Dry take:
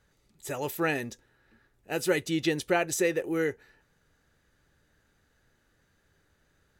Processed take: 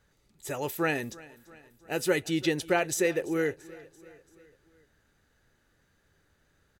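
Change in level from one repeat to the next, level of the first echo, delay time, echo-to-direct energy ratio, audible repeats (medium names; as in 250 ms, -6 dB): -5.0 dB, -21.0 dB, 338 ms, -19.5 dB, 3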